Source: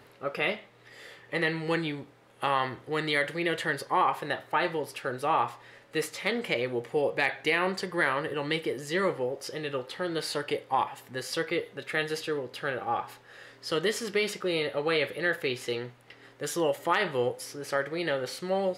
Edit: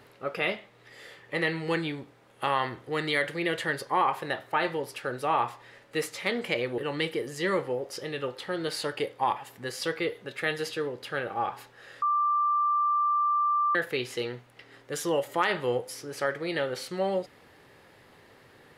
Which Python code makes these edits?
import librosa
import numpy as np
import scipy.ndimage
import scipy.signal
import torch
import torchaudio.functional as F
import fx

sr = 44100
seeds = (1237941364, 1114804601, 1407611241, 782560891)

y = fx.edit(x, sr, fx.cut(start_s=6.78, length_s=1.51),
    fx.bleep(start_s=13.53, length_s=1.73, hz=1180.0, db=-22.0), tone=tone)